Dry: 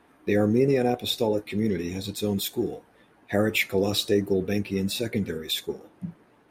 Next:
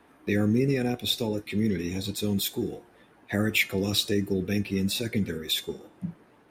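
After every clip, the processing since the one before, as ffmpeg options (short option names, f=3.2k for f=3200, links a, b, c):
-filter_complex "[0:a]acrossover=split=330|1200[a][b][c];[b]acompressor=threshold=-38dB:ratio=6[d];[a][d][c]amix=inputs=3:normalize=0,bandreject=f=355.6:t=h:w=4,bandreject=f=711.2:t=h:w=4,bandreject=f=1.0668k:t=h:w=4,bandreject=f=1.4224k:t=h:w=4,bandreject=f=1.778k:t=h:w=4,bandreject=f=2.1336k:t=h:w=4,bandreject=f=2.4892k:t=h:w=4,bandreject=f=2.8448k:t=h:w=4,bandreject=f=3.2004k:t=h:w=4,bandreject=f=3.556k:t=h:w=4,bandreject=f=3.9116k:t=h:w=4,bandreject=f=4.2672k:t=h:w=4,bandreject=f=4.6228k:t=h:w=4,bandreject=f=4.9784k:t=h:w=4,bandreject=f=5.334k:t=h:w=4,bandreject=f=5.6896k:t=h:w=4,bandreject=f=6.0452k:t=h:w=4,bandreject=f=6.4008k:t=h:w=4,bandreject=f=6.7564k:t=h:w=4,bandreject=f=7.112k:t=h:w=4,bandreject=f=7.4676k:t=h:w=4,bandreject=f=7.8232k:t=h:w=4,bandreject=f=8.1788k:t=h:w=4,bandreject=f=8.5344k:t=h:w=4,bandreject=f=8.89k:t=h:w=4,volume=1dB"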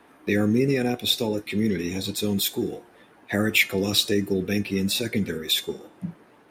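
-af "lowshelf=f=130:g=-8.5,volume=4.5dB"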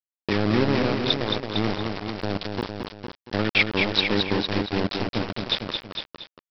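-af "aresample=11025,aeval=exprs='val(0)*gte(abs(val(0)),0.1)':c=same,aresample=44100,aecho=1:1:220|456|687:0.562|0.422|0.158"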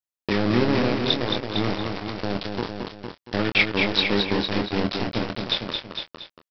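-filter_complex "[0:a]asplit=2[a][b];[b]adelay=25,volume=-8dB[c];[a][c]amix=inputs=2:normalize=0"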